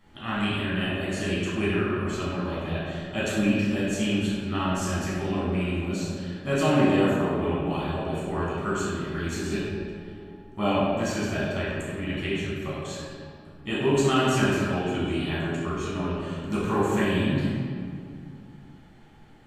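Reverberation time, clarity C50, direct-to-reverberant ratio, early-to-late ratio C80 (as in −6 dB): 2.2 s, −2.5 dB, −9.5 dB, −0.5 dB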